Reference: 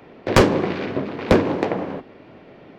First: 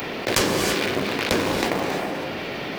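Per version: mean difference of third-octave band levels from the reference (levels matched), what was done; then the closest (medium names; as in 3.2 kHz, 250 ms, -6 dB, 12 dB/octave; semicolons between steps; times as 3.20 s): 14.0 dB: pre-emphasis filter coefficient 0.9; in parallel at -8.5 dB: word length cut 6-bit, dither none; on the sum: gated-style reverb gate 350 ms rising, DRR 10 dB; level flattener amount 70%; trim +2.5 dB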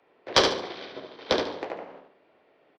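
6.5 dB: three-band isolator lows -16 dB, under 370 Hz, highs -13 dB, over 6.7 kHz; time-frequency box 0.34–1.56 s, 3–6.2 kHz +11 dB; on a send: feedback delay 72 ms, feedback 37%, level -4.5 dB; on the sum: upward expansion 1.5:1, over -33 dBFS; trim -4.5 dB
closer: second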